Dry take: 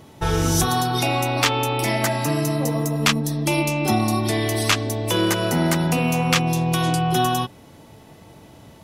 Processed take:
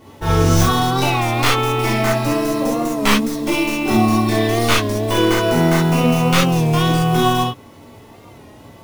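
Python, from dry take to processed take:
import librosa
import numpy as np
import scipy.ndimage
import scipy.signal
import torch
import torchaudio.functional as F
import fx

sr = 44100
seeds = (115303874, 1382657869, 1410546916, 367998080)

y = fx.tracing_dist(x, sr, depth_ms=0.15)
y = fx.high_shelf(y, sr, hz=4000.0, db=-6.0)
y = fx.quant_companded(y, sr, bits=6)
y = fx.rev_gated(y, sr, seeds[0], gate_ms=90, shape='flat', drr_db=-7.0)
y = fx.record_warp(y, sr, rpm=33.33, depth_cents=100.0)
y = y * librosa.db_to_amplitude(-2.0)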